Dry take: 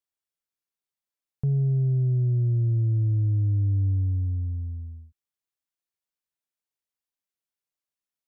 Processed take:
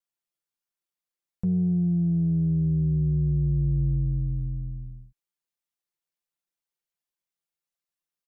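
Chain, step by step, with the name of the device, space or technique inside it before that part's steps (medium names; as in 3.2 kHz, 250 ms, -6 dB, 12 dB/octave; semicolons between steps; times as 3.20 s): ring-modulated robot voice (ring modulator 43 Hz; comb 5.8 ms, depth 83%)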